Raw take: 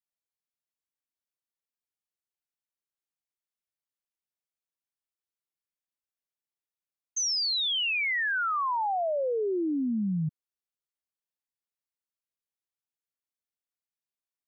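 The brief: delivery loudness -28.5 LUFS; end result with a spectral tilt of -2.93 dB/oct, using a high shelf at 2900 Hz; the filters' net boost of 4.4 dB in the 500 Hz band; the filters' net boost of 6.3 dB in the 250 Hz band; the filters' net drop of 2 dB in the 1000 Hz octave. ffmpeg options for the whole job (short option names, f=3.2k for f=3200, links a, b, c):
-af "equalizer=f=250:t=o:g=7,equalizer=f=500:t=o:g=4.5,equalizer=f=1k:t=o:g=-5.5,highshelf=f=2.9k:g=7,volume=-5dB"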